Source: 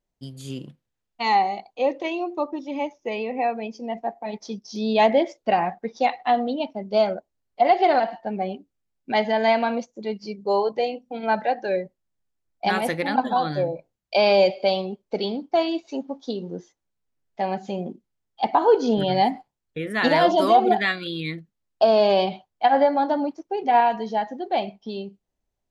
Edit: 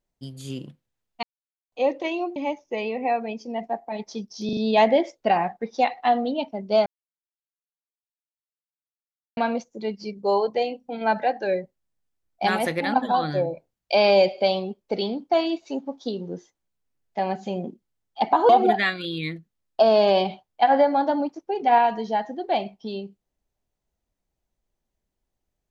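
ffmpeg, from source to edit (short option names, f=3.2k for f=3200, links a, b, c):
-filter_complex "[0:a]asplit=10[a][b][c][d][e][f][g][h][i][j];[a]atrim=end=1.23,asetpts=PTS-STARTPTS,afade=t=out:st=1.226:d=0.004:c=hsin[k];[b]atrim=start=1.23:end=1.72,asetpts=PTS-STARTPTS,volume=0[l];[c]atrim=start=1.72:end=2.362,asetpts=PTS-STARTPTS,afade=t=in:d=0.004:c=hsin[m];[d]atrim=start=2.698:end=4.832[n];[e]atrim=start=4.788:end=4.832[o];[f]atrim=start=4.788:end=4.832[p];[g]atrim=start=4.788:end=7.08,asetpts=PTS-STARTPTS,afade=t=out:st=2.288:d=0.004:c=hsin[q];[h]atrim=start=7.08:end=9.59,asetpts=PTS-STARTPTS,volume=0[r];[i]atrim=start=9.59:end=18.712,asetpts=PTS-STARTPTS,afade=t=in:d=0.004:c=hsin[s];[j]atrim=start=20.508[t];[k][l][m]concat=n=3:v=0:a=1[u];[u][n]acrossfade=d=0.004:c1=hsin:c2=hsin[v];[v][o]acrossfade=d=0.004:c1=hsin:c2=hsin[w];[w][p]acrossfade=d=0.004:c1=hsin:c2=hsin[x];[q][r][s]concat=n=3:v=0:a=1[y];[x][y]acrossfade=d=0.004:c1=hsin:c2=hsin[z];[z][t]acrossfade=d=0.004:c1=hsin:c2=hsin"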